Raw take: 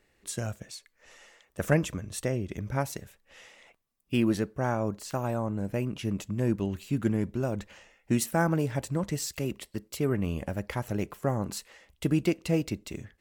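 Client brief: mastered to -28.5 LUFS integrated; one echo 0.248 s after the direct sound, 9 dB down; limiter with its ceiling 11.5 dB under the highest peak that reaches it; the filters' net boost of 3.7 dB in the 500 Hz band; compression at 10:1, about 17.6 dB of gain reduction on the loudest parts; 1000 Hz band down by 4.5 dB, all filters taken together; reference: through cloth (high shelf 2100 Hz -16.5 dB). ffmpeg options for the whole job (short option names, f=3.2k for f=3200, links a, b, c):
-af "equalizer=f=500:t=o:g=7.5,equalizer=f=1k:t=o:g=-6.5,acompressor=threshold=-35dB:ratio=10,alimiter=level_in=11dB:limit=-24dB:level=0:latency=1,volume=-11dB,highshelf=f=2.1k:g=-16.5,aecho=1:1:248:0.355,volume=17.5dB"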